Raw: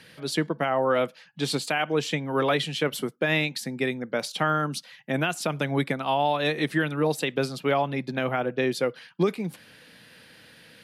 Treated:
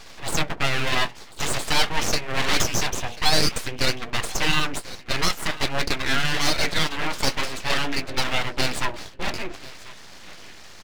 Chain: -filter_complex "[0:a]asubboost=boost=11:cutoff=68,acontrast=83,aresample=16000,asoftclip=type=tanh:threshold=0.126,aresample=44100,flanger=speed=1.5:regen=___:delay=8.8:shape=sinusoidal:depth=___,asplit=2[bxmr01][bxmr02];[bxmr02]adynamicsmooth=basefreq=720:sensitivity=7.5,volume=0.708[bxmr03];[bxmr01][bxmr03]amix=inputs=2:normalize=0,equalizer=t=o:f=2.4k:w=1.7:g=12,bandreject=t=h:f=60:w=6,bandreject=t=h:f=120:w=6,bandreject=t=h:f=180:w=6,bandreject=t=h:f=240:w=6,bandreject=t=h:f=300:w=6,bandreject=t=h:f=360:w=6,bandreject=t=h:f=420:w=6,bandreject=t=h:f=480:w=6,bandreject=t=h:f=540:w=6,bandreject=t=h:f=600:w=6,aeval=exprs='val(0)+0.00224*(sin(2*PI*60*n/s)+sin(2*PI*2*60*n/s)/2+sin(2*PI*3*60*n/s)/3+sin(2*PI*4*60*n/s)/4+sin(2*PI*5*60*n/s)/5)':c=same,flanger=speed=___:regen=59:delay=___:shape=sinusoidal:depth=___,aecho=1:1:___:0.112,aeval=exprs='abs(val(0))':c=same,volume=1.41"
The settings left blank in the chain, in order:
-51, 2.1, 0.48, 4.2, 6.7, 1041